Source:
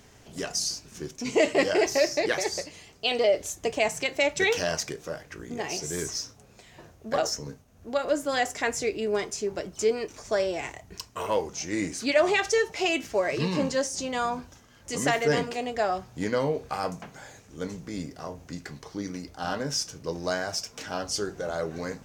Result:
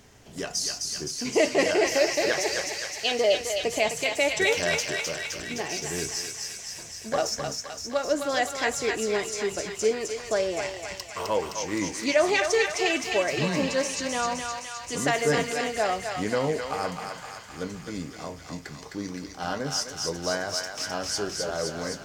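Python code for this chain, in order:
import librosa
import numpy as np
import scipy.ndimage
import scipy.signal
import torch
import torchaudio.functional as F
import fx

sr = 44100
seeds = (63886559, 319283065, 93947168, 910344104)

y = fx.echo_thinned(x, sr, ms=259, feedback_pct=74, hz=940.0, wet_db=-3.0)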